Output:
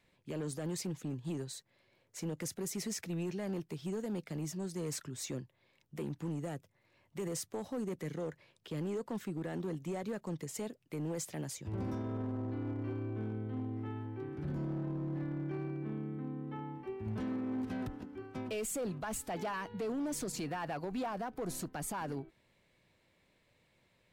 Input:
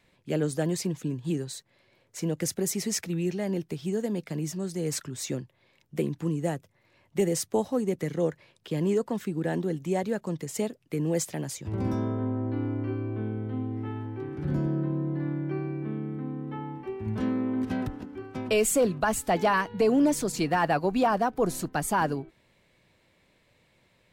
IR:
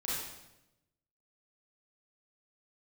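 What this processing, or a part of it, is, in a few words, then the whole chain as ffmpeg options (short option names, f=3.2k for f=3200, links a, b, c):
limiter into clipper: -af "alimiter=limit=-23dB:level=0:latency=1:release=35,asoftclip=type=hard:threshold=-26dB,volume=-6.5dB"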